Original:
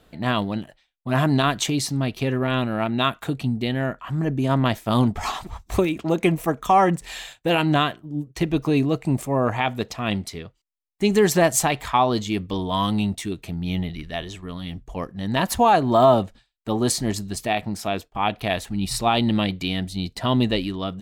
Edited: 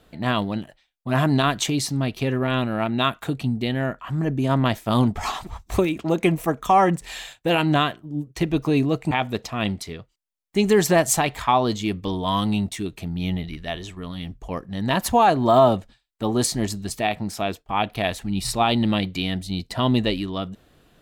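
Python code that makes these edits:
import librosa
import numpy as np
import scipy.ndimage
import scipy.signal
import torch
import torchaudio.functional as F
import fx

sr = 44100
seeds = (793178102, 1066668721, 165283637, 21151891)

y = fx.edit(x, sr, fx.cut(start_s=9.11, length_s=0.46), tone=tone)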